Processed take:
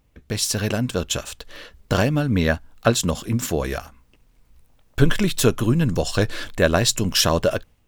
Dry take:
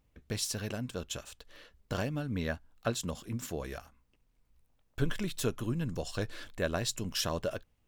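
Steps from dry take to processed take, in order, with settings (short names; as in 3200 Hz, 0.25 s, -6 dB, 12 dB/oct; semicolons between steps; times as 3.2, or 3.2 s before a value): AGC gain up to 6 dB; gain +8.5 dB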